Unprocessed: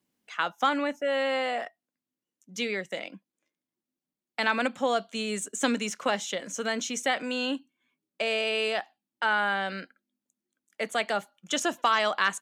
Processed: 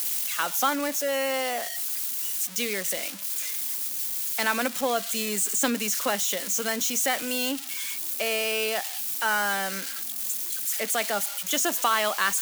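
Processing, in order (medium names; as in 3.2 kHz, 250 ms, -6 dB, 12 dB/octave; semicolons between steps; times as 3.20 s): zero-crossing glitches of -21 dBFS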